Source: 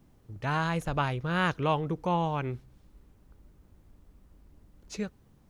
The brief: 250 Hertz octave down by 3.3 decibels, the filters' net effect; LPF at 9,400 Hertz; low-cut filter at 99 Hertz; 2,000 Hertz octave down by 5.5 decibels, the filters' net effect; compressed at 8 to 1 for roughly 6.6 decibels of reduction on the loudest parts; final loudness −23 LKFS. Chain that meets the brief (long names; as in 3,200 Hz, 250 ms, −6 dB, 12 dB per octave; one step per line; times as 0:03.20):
high-pass filter 99 Hz
low-pass filter 9,400 Hz
parametric band 250 Hz −5.5 dB
parametric band 2,000 Hz −8 dB
downward compressor 8 to 1, threshold −31 dBFS
level +14.5 dB